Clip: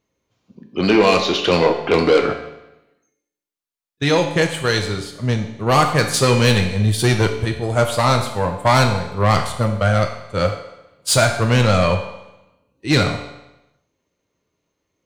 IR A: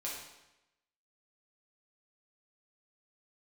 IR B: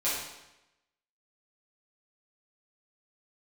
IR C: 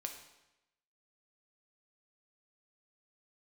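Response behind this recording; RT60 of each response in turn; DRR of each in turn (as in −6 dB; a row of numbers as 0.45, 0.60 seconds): C; 0.95, 0.95, 0.95 seconds; −6.0, −11.5, 3.5 decibels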